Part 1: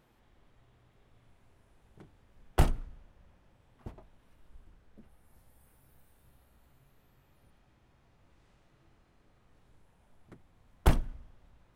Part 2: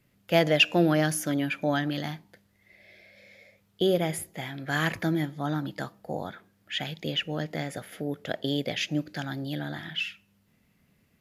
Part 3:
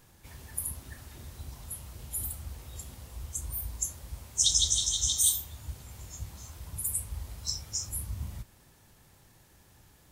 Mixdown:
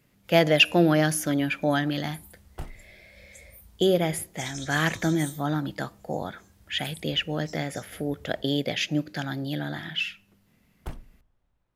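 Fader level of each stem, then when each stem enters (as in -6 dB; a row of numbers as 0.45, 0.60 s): -13.0, +2.5, -15.5 dB; 0.00, 0.00, 0.00 s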